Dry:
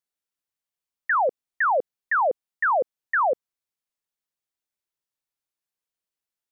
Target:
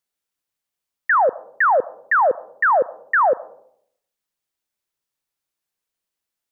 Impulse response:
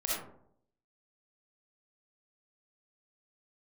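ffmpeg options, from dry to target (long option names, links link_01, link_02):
-filter_complex "[0:a]asplit=2[link_01][link_02];[1:a]atrim=start_sample=2205,lowshelf=frequency=450:gain=8,adelay=38[link_03];[link_02][link_03]afir=irnorm=-1:irlink=0,volume=-28.5dB[link_04];[link_01][link_04]amix=inputs=2:normalize=0,volume=5.5dB"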